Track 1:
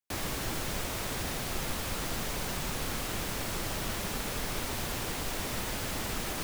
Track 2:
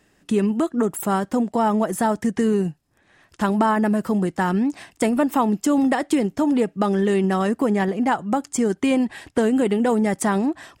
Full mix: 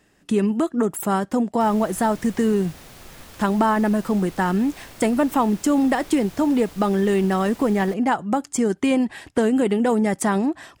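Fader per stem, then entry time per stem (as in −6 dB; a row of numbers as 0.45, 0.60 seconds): −9.0, 0.0 decibels; 1.50, 0.00 seconds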